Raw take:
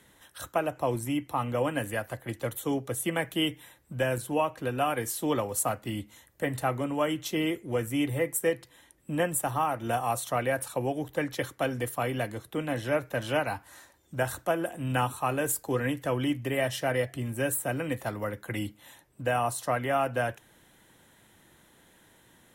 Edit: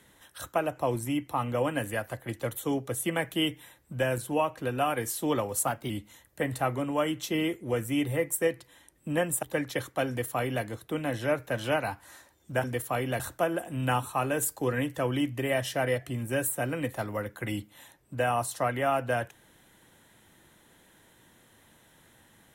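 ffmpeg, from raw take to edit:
-filter_complex "[0:a]asplit=6[a][b][c][d][e][f];[a]atrim=end=5.674[g];[b]atrim=start=5.67:end=5.92,asetpts=PTS-STARTPTS,asetrate=48510,aresample=44100[h];[c]atrim=start=5.916:end=9.452[i];[d]atrim=start=11.058:end=14.272[j];[e]atrim=start=11.708:end=12.272[k];[f]atrim=start=14.268[l];[g][h]acrossfade=d=0.004:c1=hsin:c2=hsin[m];[m][i]acrossfade=d=0.004:c1=hsin:c2=hsin[n];[n][j]acrossfade=d=0.004:c1=hsin:c2=hsin[o];[o][k]acrossfade=d=0.004:c1=hsin:c2=hsin[p];[p][l]acrossfade=d=0.004:c1=hsin:c2=hsin"

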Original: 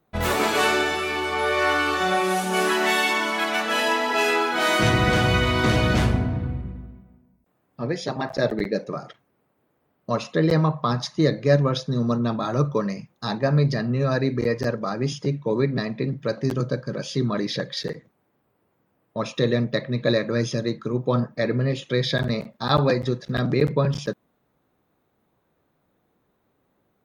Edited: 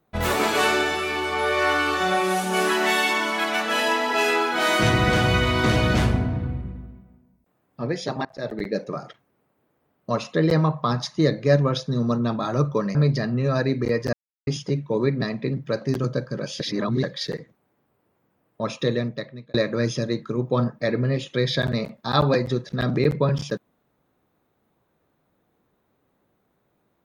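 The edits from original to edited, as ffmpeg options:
-filter_complex "[0:a]asplit=8[a][b][c][d][e][f][g][h];[a]atrim=end=8.25,asetpts=PTS-STARTPTS,afade=t=out:st=8.246:d=0.004:c=hsin:silence=0.0749894[i];[b]atrim=start=8.25:end=12.952,asetpts=PTS-STARTPTS,afade=t=in:d=0.56:silence=0.0749894[j];[c]atrim=start=13.508:end=14.69,asetpts=PTS-STARTPTS,afade=t=out:st=1.178:d=0.004:c=hsin[k];[d]atrim=start=14.69:end=15.03,asetpts=PTS-STARTPTS,volume=0[l];[e]atrim=start=15.03:end=17.162,asetpts=PTS-STARTPTS,afade=t=in:d=0.004:c=hsin[m];[f]atrim=start=17.158:end=17.592,asetpts=PTS-STARTPTS,areverse[n];[g]atrim=start=17.588:end=20.1,asetpts=PTS-STARTPTS,afade=t=out:st=1.732:d=0.78[o];[h]atrim=start=20.1,asetpts=PTS-STARTPTS,afade=t=in:d=0.004:c=hsin[p];[i][j]concat=n=2:v=0:a=1[q];[k][l][m]concat=n=3:v=0:a=1[r];[q][r]acrossfade=d=0.004:c1=hsin:c2=hsin[s];[s][n]acrossfade=d=0.004:c1=hsin:c2=hsin[t];[o][p]concat=n=2:v=0:a=1[u];[t][u]acrossfade=d=0.004:c1=hsin:c2=hsin"

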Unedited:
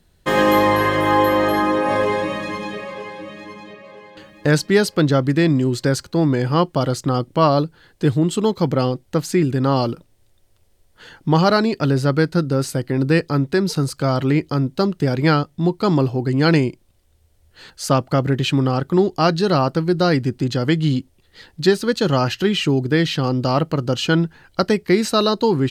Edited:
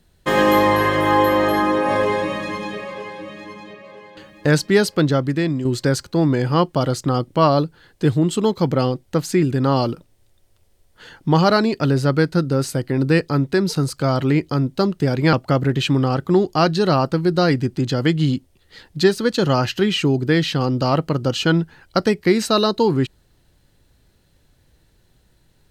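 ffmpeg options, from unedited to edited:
-filter_complex "[0:a]asplit=3[a][b][c];[a]atrim=end=5.65,asetpts=PTS-STARTPTS,afade=t=out:st=4.92:d=0.73:silence=0.446684[d];[b]atrim=start=5.65:end=15.332,asetpts=PTS-STARTPTS,afade=t=in:d=0.004:c=hsin:silence=0.446684[e];[c]atrim=start=17.958[f];[d][e]concat=n=2:v=0:a=1[g];[g][f]acrossfade=d=0.004:c1=hsin:c2=hsin"

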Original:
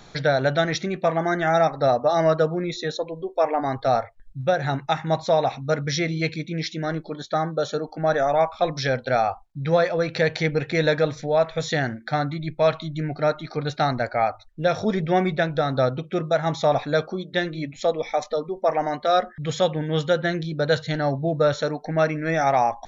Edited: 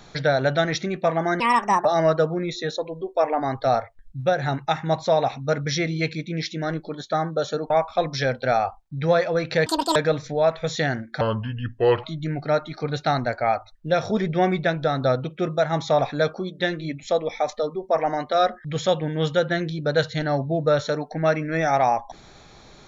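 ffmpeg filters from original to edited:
-filter_complex "[0:a]asplit=8[a][b][c][d][e][f][g][h];[a]atrim=end=1.404[i];[b]atrim=start=1.4:end=2.06,asetpts=PTS-STARTPTS,asetrate=64386,aresample=44100[j];[c]atrim=start=2.056:end=7.912[k];[d]atrim=start=8.338:end=10.304[l];[e]atrim=start=10.3:end=10.89,asetpts=PTS-STARTPTS,asetrate=88200,aresample=44100[m];[f]atrim=start=10.886:end=12.144[n];[g]atrim=start=12.14:end=12.77,asetpts=PTS-STARTPTS,asetrate=33516,aresample=44100[o];[h]atrim=start=12.766[p];[i][j]acrossfade=d=0.004:c1=hsin:c2=hsin[q];[q][k]acrossfade=d=0.004:c1=hsin:c2=hsin[r];[r][l]acrossfade=d=0.004:c1=hsin:c2=hsin[s];[s][m]acrossfade=d=0.004:c1=hsin:c2=hsin[t];[t][n]acrossfade=d=0.004:c1=hsin:c2=hsin[u];[u][o]acrossfade=d=0.004:c1=hsin:c2=hsin[v];[v][p]acrossfade=d=0.004:c1=hsin:c2=hsin"

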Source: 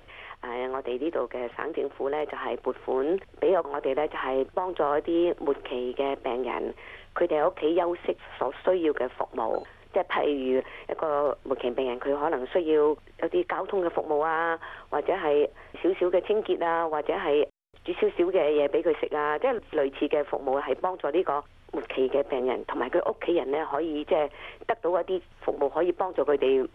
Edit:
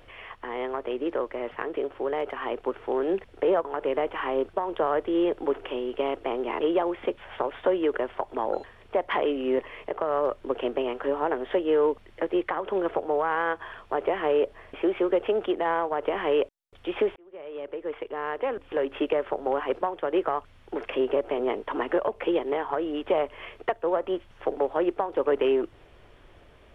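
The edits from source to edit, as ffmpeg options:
-filter_complex "[0:a]asplit=3[a][b][c];[a]atrim=end=6.612[d];[b]atrim=start=7.618:end=18.17,asetpts=PTS-STARTPTS,afade=t=out:st=10.548:d=0.004:c=hsin[e];[c]atrim=start=18.17,asetpts=PTS-STARTPTS,afade=t=in:d=1.89[f];[e][f]concat=n=2:v=0:a=1[g];[d][g]acrossfade=d=0.004:c1=hsin:c2=hsin"

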